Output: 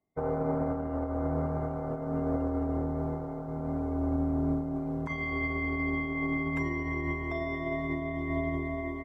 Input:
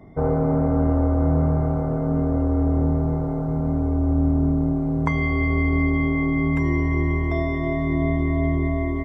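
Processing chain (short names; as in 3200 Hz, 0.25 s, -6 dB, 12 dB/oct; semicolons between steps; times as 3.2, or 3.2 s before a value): low shelf 260 Hz -11 dB; limiter -20 dBFS, peak gain reduction 10.5 dB; upward expander 2.5:1, over -48 dBFS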